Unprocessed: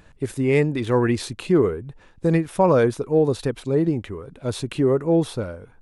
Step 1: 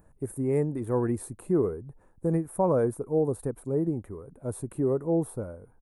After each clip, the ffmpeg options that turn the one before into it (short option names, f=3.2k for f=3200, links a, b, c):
-af "firequalizer=gain_entry='entry(780,0);entry(3000,-24);entry(4900,-20);entry(9400,6)':delay=0.05:min_phase=1,volume=-7dB"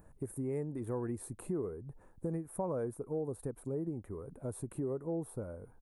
-af "acompressor=threshold=-39dB:ratio=2.5"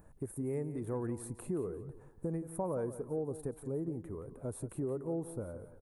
-af "aecho=1:1:174|348|522:0.224|0.0694|0.0215"